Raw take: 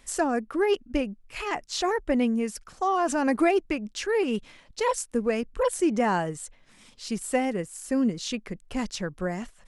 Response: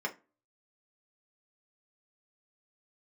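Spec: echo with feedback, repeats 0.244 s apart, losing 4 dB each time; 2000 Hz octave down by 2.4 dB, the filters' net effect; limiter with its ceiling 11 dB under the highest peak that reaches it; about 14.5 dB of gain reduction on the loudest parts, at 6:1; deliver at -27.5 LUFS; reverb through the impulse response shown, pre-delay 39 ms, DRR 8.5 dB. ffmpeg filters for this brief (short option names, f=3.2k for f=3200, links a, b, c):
-filter_complex "[0:a]equalizer=f=2k:t=o:g=-3,acompressor=threshold=-35dB:ratio=6,alimiter=level_in=10dB:limit=-24dB:level=0:latency=1,volume=-10dB,aecho=1:1:244|488|732|976|1220|1464|1708|1952|2196:0.631|0.398|0.25|0.158|0.0994|0.0626|0.0394|0.0249|0.0157,asplit=2[a][b];[1:a]atrim=start_sample=2205,adelay=39[c];[b][c]afir=irnorm=-1:irlink=0,volume=-13.5dB[d];[a][d]amix=inputs=2:normalize=0,volume=13dB"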